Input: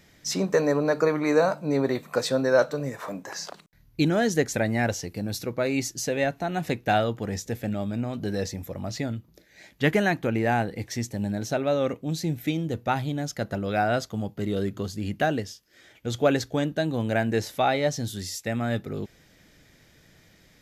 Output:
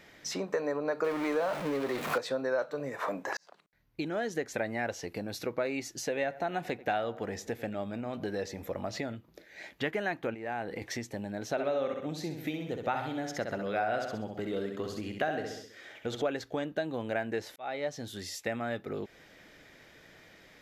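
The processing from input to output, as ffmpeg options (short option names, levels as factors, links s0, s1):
-filter_complex "[0:a]asettb=1/sr,asplit=3[s0][s1][s2];[s0]atrim=end=1.044[s3];[s1]atrim=start=1.04:end=2.18,asetpts=PTS-STARTPTS,afade=t=in:d=0.004:c=qsin,afade=t=out:st=1.136:d=0.004:c=qsin,aeval=exprs='val(0)+0.5*0.0708*sgn(val(0))':c=same[s4];[s2]atrim=start=2.176[s5];[s3][s4]acrossfade=d=0.004:c1=hsin:c2=qsin[s6];[s6][s5]acrossfade=d=0.004:c1=qsin:c2=hsin,asettb=1/sr,asplit=3[s7][s8][s9];[s7]atrim=end=6.124[s10];[s8]atrim=start=6.12:end=9.16,asetpts=PTS-STARTPTS,afade=t=in:d=0.004:c=qsin,afade=t=out:st=3.036:d=0.004:c=qsin,asplit=2[s11][s12];[s12]adelay=89,lowpass=f=1600:p=1,volume=0.112,asplit=2[s13][s14];[s14]adelay=89,lowpass=f=1600:p=1,volume=0.48,asplit=2[s15][s16];[s16]adelay=89,lowpass=f=1600:p=1,volume=0.48,asplit=2[s17][s18];[s18]adelay=89,lowpass=f=1600:p=1,volume=0.48[s19];[s11][s13][s15][s17][s19]amix=inputs=5:normalize=0,atrim=end_sample=134064[s20];[s9]atrim=start=9.156[s21];[s10][s20]acrossfade=d=0.004:c1=hsin:c2=qsin[s22];[s22][s21]acrossfade=d=0.004:c1=qsin:c2=hsin,asettb=1/sr,asplit=3[s23][s24][s25];[s23]atrim=end=10.344[s26];[s24]atrim=start=10.34:end=10.82,asetpts=PTS-STARTPTS,afade=t=in:d=0.004:c=qsin,afade=t=out:st=0.476:d=0.004:c=qsin,acompressor=threshold=0.0224:ratio=10:attack=3.2:release=140:knee=1:detection=peak[s27];[s25]atrim=start=10.816[s28];[s26][s27]acrossfade=d=0.004:c1=hsin:c2=qsin[s29];[s29][s28]acrossfade=d=0.004:c1=qsin:c2=hsin,asettb=1/sr,asplit=3[s30][s31][s32];[s30]atrim=end=11.514[s33];[s31]atrim=start=11.51:end=16.22,asetpts=PTS-STARTPTS,afade=t=in:d=0.004:c=qsin,afade=t=out:st=4.706:d=0.004:c=qsin,aecho=1:1:65|130|195|260|325:0.501|0.226|0.101|0.0457|0.0206,atrim=end_sample=207711[s34];[s32]atrim=start=16.216[s35];[s33][s34]acrossfade=d=0.004:c1=hsin:c2=qsin[s36];[s36][s35]acrossfade=d=0.004:c1=qsin:c2=hsin,asplit=3[s37][s38][s39];[s37]atrim=end=3.37,asetpts=PTS-STARTPTS,afade=t=out:st=3.366:d=0.004:c=hsin[s40];[s38]atrim=start=3.37:end=17.56,asetpts=PTS-STARTPTS,afade=t=in:d=1.31,afade=t=out:st=14.186:d=0.004:c=hsin[s41];[s39]atrim=start=17.56,asetpts=PTS-STARTPTS,afade=t=in:d=1.02[s42];[s40][s41][s42]concat=n=3:v=0:a=1,acompressor=threshold=0.0224:ratio=5,bass=f=250:g=-12,treble=f=4000:g=-10,volume=1.78"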